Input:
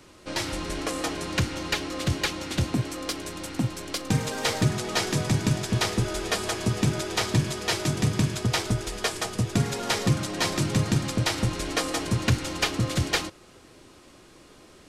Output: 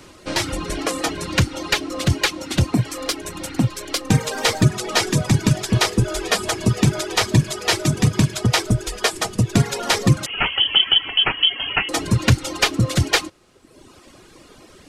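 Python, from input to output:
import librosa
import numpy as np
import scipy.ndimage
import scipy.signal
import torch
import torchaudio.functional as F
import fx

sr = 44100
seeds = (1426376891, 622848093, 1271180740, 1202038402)

y = fx.doubler(x, sr, ms=33.0, db=-11.0, at=(2.67, 3.12))
y = fx.dereverb_blind(y, sr, rt60_s=1.1)
y = fx.freq_invert(y, sr, carrier_hz=3200, at=(10.26, 11.89))
y = y * librosa.db_to_amplitude(8.0)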